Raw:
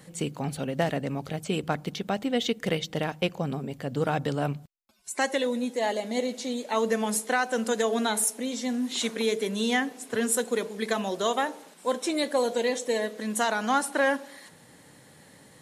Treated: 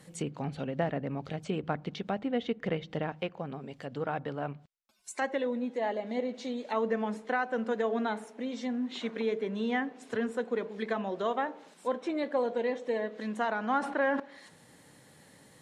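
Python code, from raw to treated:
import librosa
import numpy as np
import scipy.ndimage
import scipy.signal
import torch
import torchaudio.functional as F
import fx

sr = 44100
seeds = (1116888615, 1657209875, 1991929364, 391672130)

y = fx.env_lowpass_down(x, sr, base_hz=2000.0, full_db=-25.5)
y = fx.low_shelf(y, sr, hz=360.0, db=-7.5, at=(3.21, 5.22))
y = fx.sustainer(y, sr, db_per_s=46.0, at=(13.79, 14.2))
y = y * librosa.db_to_amplitude(-4.0)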